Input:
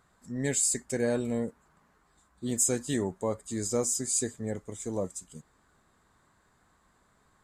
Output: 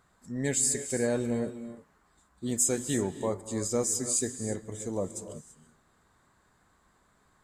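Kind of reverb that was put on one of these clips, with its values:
reverb whose tail is shaped and stops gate 360 ms rising, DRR 11 dB

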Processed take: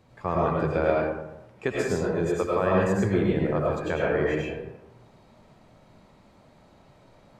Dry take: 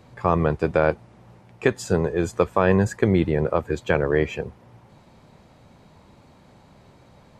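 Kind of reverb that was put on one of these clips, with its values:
comb and all-pass reverb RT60 0.89 s, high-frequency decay 0.55×, pre-delay 60 ms, DRR −4.5 dB
level −8.5 dB

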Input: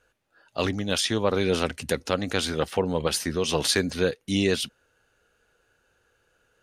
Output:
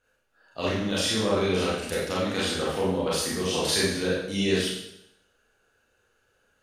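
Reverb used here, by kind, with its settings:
four-comb reverb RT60 0.78 s, combs from 29 ms, DRR −7 dB
level −8 dB

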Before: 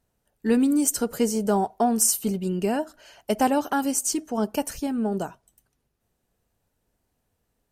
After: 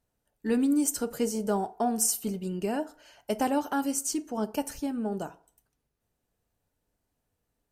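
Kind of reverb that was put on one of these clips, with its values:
feedback delay network reverb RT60 0.49 s, low-frequency decay 0.75×, high-frequency decay 0.55×, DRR 12 dB
level −5.5 dB

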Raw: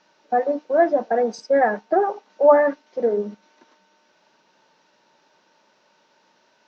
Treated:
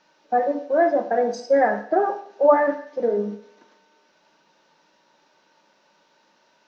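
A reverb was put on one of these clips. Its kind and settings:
coupled-rooms reverb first 0.58 s, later 1.9 s, from −26 dB, DRR 5.5 dB
level −1.5 dB

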